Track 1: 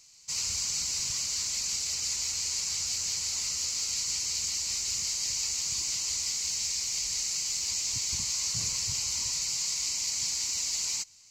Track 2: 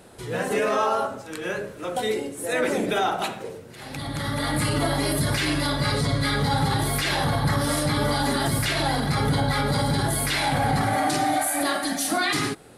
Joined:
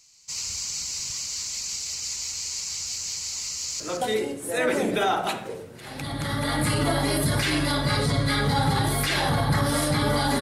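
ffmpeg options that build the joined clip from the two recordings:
ffmpeg -i cue0.wav -i cue1.wav -filter_complex "[0:a]apad=whole_dur=10.41,atrim=end=10.41,atrim=end=3.802[link_01];[1:a]atrim=start=1.748:end=8.36[link_02];[link_01][link_02]acrossfade=duration=0.004:curve1=hsin:curve2=hsin,asplit=2[link_03][link_04];[link_04]afade=type=in:start_time=3.51:duration=0.01,afade=type=out:start_time=3.8:duration=0.01,aecho=0:1:170|340|510|680:0.446684|0.156339|0.0547187|0.0191516[link_05];[link_03][link_05]amix=inputs=2:normalize=0" out.wav

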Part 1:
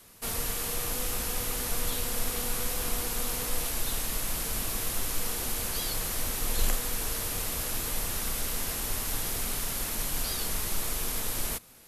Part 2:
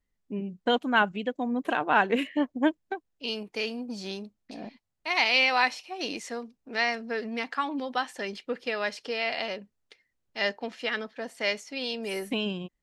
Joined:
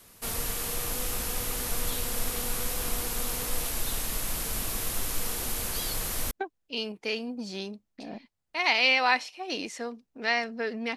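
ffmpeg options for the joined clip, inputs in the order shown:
ffmpeg -i cue0.wav -i cue1.wav -filter_complex "[0:a]apad=whole_dur=10.96,atrim=end=10.96,atrim=end=6.312[link_01];[1:a]atrim=start=2.818:end=7.47[link_02];[link_01][link_02]acrossfade=duration=0.004:curve1=hsin:curve2=hsin" out.wav

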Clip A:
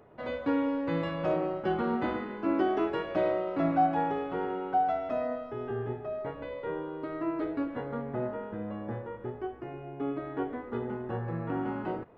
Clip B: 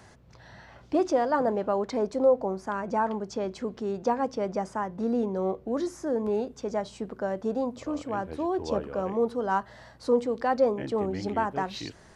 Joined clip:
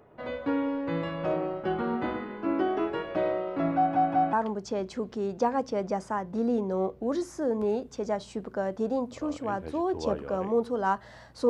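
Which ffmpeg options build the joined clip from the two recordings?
ffmpeg -i cue0.wav -i cue1.wav -filter_complex "[0:a]apad=whole_dur=11.49,atrim=end=11.49,asplit=3[link_01][link_02][link_03];[link_01]atrim=end=3.952[link_04];[link_02]atrim=start=3.758:end=3.952[link_05];[link_03]atrim=start=3.758:end=3.952[link_06];[1:a]atrim=start=2.978:end=10.14[link_07];[link_04][link_05]acrossfade=duration=0.004:curve1=hsin:curve2=hsin[link_08];[link_08][link_06]acrossfade=duration=0.004:curve1=hsin:curve2=hsin[link_09];[link_09][link_07]acrossfade=duration=0.004:curve1=hsin:curve2=hsin" out.wav

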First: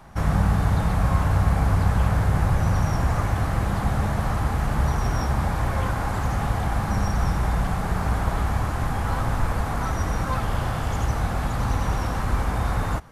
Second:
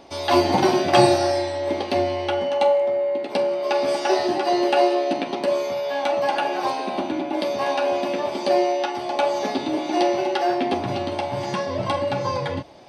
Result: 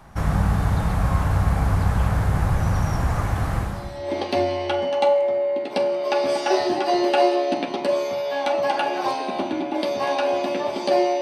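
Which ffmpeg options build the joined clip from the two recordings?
ffmpeg -i cue0.wav -i cue1.wav -filter_complex "[0:a]apad=whole_dur=11.21,atrim=end=11.21,atrim=end=4.19,asetpts=PTS-STARTPTS[link_01];[1:a]atrim=start=1.16:end=8.8,asetpts=PTS-STARTPTS[link_02];[link_01][link_02]acrossfade=duration=0.62:curve1=qua:curve2=qua" out.wav

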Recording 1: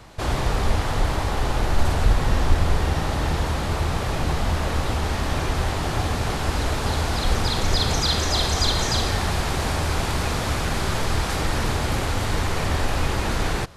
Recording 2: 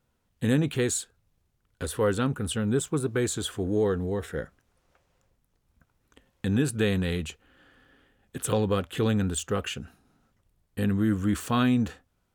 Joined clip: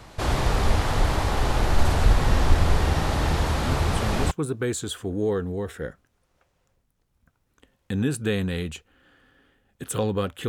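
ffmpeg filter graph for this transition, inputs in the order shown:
ffmpeg -i cue0.wav -i cue1.wav -filter_complex "[1:a]asplit=2[link_01][link_02];[0:a]apad=whole_dur=10.48,atrim=end=10.48,atrim=end=4.312[link_03];[link_02]atrim=start=2.848:end=9.02[link_04];[link_01]atrim=start=2.19:end=2.85,asetpts=PTS-STARTPTS,volume=-6.5dB,afade=type=in:duration=0.004:curve=hsin,afade=type=out:start_time=0.656:duration=0.004:curve=hsin,adelay=160965S[link_05];[link_03][link_04]acrossfade=duration=0.004:curve1=hsin:curve2=hsin[link_06];[link_06][link_05]amix=inputs=2:normalize=0" out.wav

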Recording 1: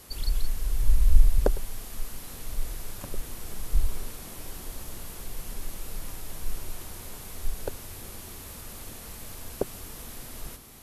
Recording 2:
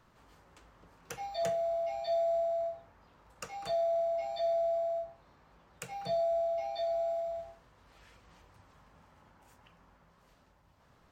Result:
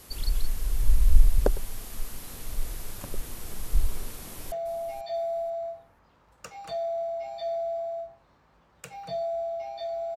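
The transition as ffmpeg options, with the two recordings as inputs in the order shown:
ffmpeg -i cue0.wav -i cue1.wav -filter_complex "[0:a]apad=whole_dur=10.16,atrim=end=10.16,atrim=end=4.522[link_01];[1:a]atrim=start=1.498:end=7.14[link_02];[link_01][link_02]acrossfade=duration=0.004:curve1=hsin:curve2=hsin,asplit=2[link_03][link_04];[link_04]afade=type=in:start_time=4.16:duration=0.01,afade=type=out:start_time=4.52:duration=0.01,aecho=0:1:490|980|1470:0.266073|0.0532145|0.0106429[link_05];[link_03][link_05]amix=inputs=2:normalize=0" out.wav

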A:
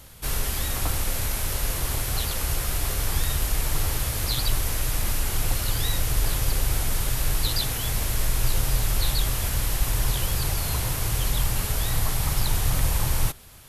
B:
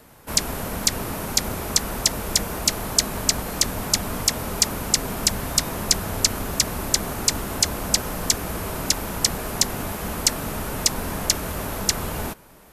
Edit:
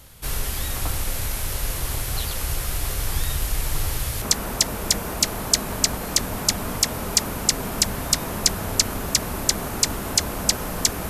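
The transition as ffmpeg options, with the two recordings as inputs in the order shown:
ffmpeg -i cue0.wav -i cue1.wav -filter_complex "[0:a]apad=whole_dur=11.09,atrim=end=11.09,atrim=end=4.222[link_01];[1:a]atrim=start=1.668:end=8.54[link_02];[link_01][link_02]acrossfade=duration=0.004:curve1=hsin:curve2=hsin" out.wav

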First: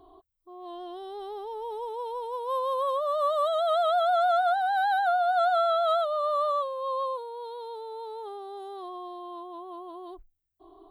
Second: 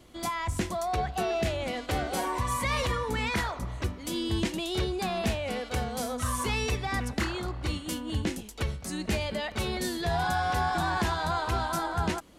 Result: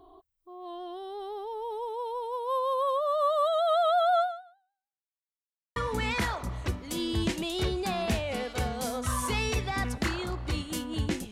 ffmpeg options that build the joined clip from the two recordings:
ffmpeg -i cue0.wav -i cue1.wav -filter_complex "[0:a]apad=whole_dur=11.31,atrim=end=11.31,asplit=2[link_01][link_02];[link_01]atrim=end=5.1,asetpts=PTS-STARTPTS,afade=type=out:start_time=4.2:duration=0.9:curve=exp[link_03];[link_02]atrim=start=5.1:end=5.76,asetpts=PTS-STARTPTS,volume=0[link_04];[1:a]atrim=start=2.92:end=8.47,asetpts=PTS-STARTPTS,afade=type=in:duration=0.004:curve=hsin[link_05];[link_03][link_04][link_05]concat=n=3:v=0:a=1" out.wav

